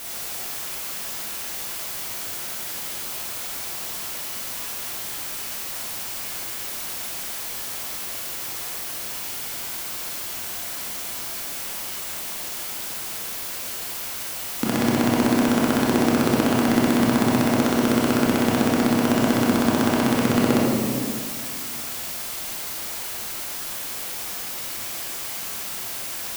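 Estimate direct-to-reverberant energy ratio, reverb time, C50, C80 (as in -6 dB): -5.0 dB, 2.1 s, -1.5 dB, 0.5 dB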